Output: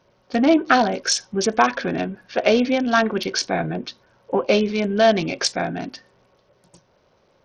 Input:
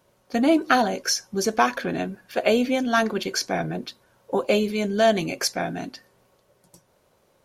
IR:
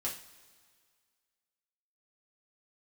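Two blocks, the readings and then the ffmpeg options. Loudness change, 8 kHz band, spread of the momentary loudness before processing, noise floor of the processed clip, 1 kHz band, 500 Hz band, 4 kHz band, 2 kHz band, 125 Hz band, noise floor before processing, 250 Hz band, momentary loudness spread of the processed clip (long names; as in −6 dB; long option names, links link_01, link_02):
+3.0 dB, +2.0 dB, 10 LU, −62 dBFS, +3.0 dB, +3.0 dB, +3.5 dB, +3.0 dB, +3.0 dB, −64 dBFS, +3.0 dB, 10 LU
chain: -af "volume=3dB" -ar 48000 -c:a sbc -b:a 64k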